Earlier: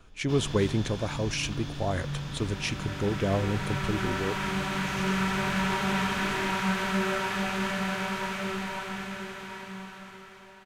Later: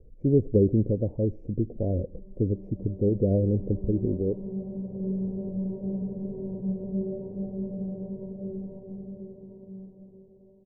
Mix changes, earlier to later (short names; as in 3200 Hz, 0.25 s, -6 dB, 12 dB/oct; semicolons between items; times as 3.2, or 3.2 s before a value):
speech +5.5 dB; first sound: muted; master: add elliptic low-pass 530 Hz, stop band 60 dB